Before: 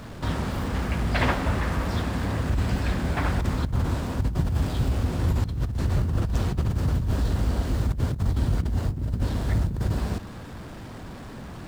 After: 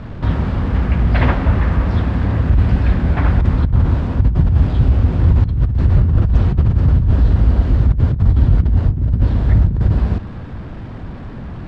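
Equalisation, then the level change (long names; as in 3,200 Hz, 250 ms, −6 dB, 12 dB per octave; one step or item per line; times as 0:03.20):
low-pass filter 3,000 Hz 12 dB per octave
low-shelf EQ 190 Hz +9.5 dB
+4.0 dB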